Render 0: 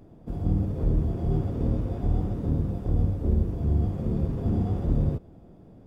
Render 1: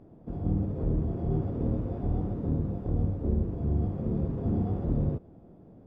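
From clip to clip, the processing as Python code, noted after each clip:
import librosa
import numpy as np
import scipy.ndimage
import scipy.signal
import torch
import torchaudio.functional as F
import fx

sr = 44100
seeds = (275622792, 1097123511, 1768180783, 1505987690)

y = fx.lowpass(x, sr, hz=1100.0, slope=6)
y = fx.low_shelf(y, sr, hz=93.0, db=-7.5)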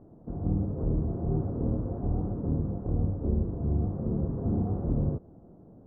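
y = scipy.signal.sosfilt(scipy.signal.butter(4, 1400.0, 'lowpass', fs=sr, output='sos'), x)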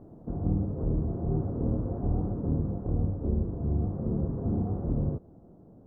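y = fx.rider(x, sr, range_db=4, speed_s=0.5)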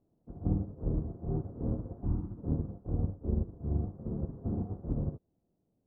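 y = fx.spec_box(x, sr, start_s=2.05, length_s=0.32, low_hz=370.0, high_hz=820.0, gain_db=-11)
y = fx.upward_expand(y, sr, threshold_db=-40.0, expansion=2.5)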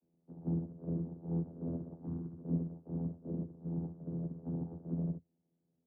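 y = fx.vocoder(x, sr, bands=16, carrier='saw', carrier_hz=83.8)
y = y * librosa.db_to_amplitude(-1.0)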